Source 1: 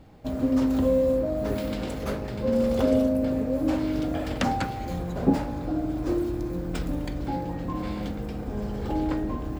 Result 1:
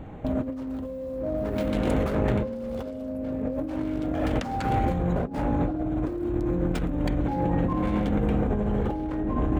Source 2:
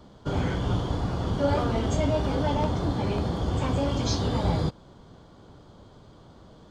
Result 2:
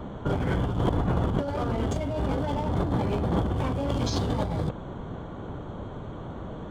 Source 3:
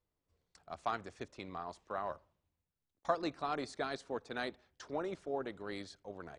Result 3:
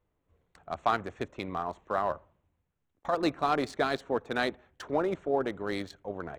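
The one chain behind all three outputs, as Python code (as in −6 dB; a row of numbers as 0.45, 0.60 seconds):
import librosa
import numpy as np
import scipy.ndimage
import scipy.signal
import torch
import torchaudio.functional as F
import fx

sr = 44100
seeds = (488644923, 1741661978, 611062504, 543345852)

y = fx.wiener(x, sr, points=9)
y = fx.over_compress(y, sr, threshold_db=-33.0, ratio=-1.0)
y = y * 10.0 ** (-12 / 20.0) / np.max(np.abs(y))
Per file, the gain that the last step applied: +5.5, +6.5, +9.5 decibels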